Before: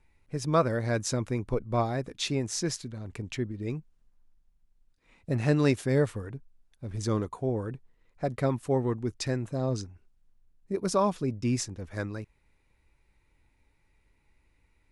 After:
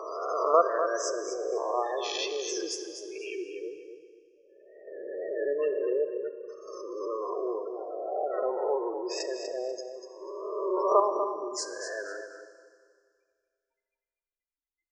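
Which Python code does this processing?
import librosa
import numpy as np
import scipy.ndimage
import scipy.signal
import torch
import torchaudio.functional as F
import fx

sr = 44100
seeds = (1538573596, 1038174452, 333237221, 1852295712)

p1 = fx.spec_swells(x, sr, rise_s=1.65)
p2 = fx.notch(p1, sr, hz=3800.0, q=9.6)
p3 = fx.spec_gate(p2, sr, threshold_db=-15, keep='strong')
p4 = scipy.signal.sosfilt(scipy.signal.ellip(4, 1.0, 40, 380.0, 'highpass', fs=sr, output='sos'), p3)
p5 = fx.level_steps(p4, sr, step_db=23)
p6 = p4 + (p5 * 10.0 ** (1.0 / 20.0))
p7 = fx.wow_flutter(p6, sr, seeds[0], rate_hz=2.1, depth_cents=78.0)
p8 = fx.echo_feedback(p7, sr, ms=244, feedback_pct=21, wet_db=-9.0)
p9 = fx.rev_schroeder(p8, sr, rt60_s=2.0, comb_ms=27, drr_db=10.5)
y = p9 * 10.0 ** (-3.0 / 20.0)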